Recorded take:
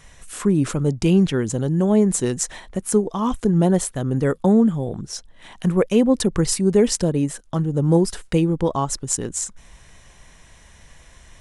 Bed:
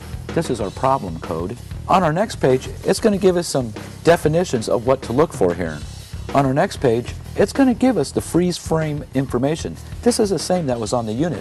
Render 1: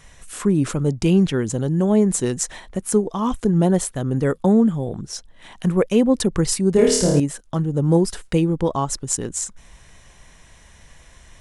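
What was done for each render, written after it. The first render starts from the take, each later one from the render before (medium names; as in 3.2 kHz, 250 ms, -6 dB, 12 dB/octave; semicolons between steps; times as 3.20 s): 6.72–7.20 s: flutter echo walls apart 4.7 m, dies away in 0.72 s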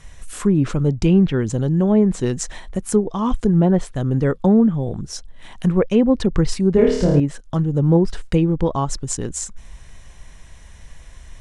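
low-pass that closes with the level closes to 2.5 kHz, closed at -12.5 dBFS; bass shelf 91 Hz +10.5 dB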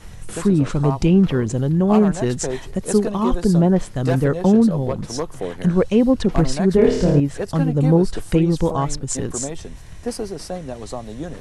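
add bed -10.5 dB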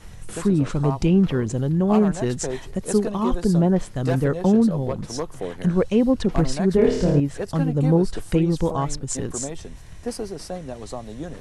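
trim -3 dB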